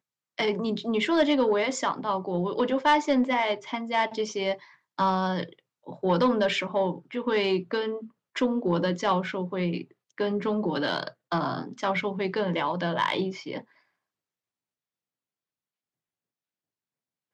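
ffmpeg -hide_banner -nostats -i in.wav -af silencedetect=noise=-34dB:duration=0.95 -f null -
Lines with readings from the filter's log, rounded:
silence_start: 13.61
silence_end: 17.33 | silence_duration: 3.72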